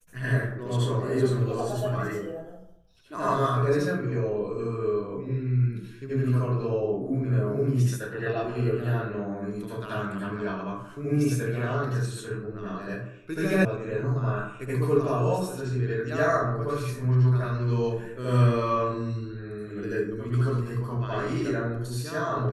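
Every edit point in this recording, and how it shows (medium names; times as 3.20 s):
13.65 s: sound stops dead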